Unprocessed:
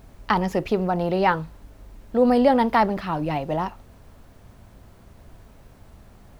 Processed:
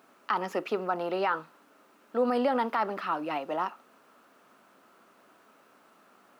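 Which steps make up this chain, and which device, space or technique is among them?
laptop speaker (high-pass filter 250 Hz 24 dB per octave; parametric band 1,300 Hz +11.5 dB 0.57 octaves; parametric band 2,700 Hz +4.5 dB 0.36 octaves; brickwall limiter −10 dBFS, peak gain reduction 9 dB)
level −7 dB

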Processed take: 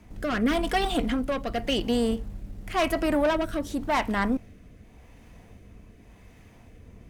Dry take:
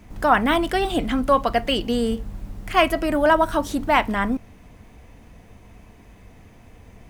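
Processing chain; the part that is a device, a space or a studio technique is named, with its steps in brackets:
0:00.41–0:01.14: comb filter 4.2 ms, depth 56%
overdriven rotary cabinet (tube saturation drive 16 dB, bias 0.4; rotating-speaker cabinet horn 0.9 Hz)

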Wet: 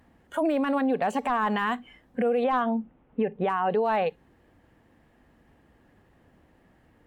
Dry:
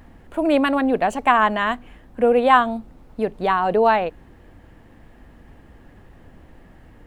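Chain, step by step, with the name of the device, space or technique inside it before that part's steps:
0:02.44–0:03.70: Butterworth low-pass 3,200 Hz 48 dB per octave
noise reduction from a noise print of the clip's start 16 dB
podcast mastering chain (high-pass filter 110 Hz 6 dB per octave; de-essing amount 90%; downward compressor 2.5 to 1, threshold −28 dBFS, peak gain reduction 10 dB; brickwall limiter −23.5 dBFS, peak gain reduction 8 dB; level +6.5 dB; MP3 96 kbit/s 48,000 Hz)

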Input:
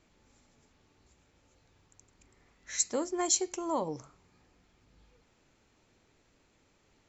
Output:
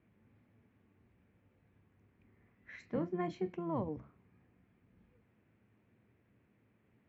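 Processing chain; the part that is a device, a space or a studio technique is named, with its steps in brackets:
sub-octave bass pedal (sub-octave generator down 1 octave, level −3 dB; loudspeaker in its box 77–2,300 Hz, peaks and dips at 110 Hz +7 dB, 210 Hz +8 dB, 570 Hz −3 dB, 860 Hz −6 dB, 1,300 Hz −5 dB)
0:02.80–0:03.55: double-tracking delay 30 ms −10.5 dB
level −4 dB

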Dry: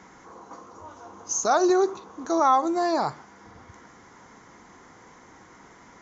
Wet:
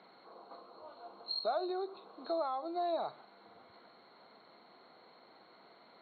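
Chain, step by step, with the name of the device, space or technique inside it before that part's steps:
hearing aid with frequency lowering (hearing-aid frequency compression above 3,700 Hz 4 to 1; downward compressor 3 to 1, threshold −28 dBFS, peak gain reduction 10 dB; loudspeaker in its box 270–5,900 Hz, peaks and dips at 290 Hz −5 dB, 650 Hz +8 dB, 970 Hz −5 dB, 1,800 Hz −9 dB)
level −8 dB

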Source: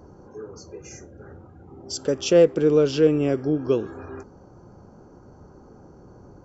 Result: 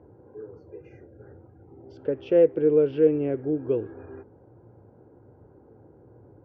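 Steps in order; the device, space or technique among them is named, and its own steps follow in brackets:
bass cabinet (loudspeaker in its box 62–2,400 Hz, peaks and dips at 110 Hz +8 dB, 190 Hz −6 dB, 320 Hz +4 dB, 470 Hz +6 dB, 1,200 Hz −9 dB)
level −7 dB

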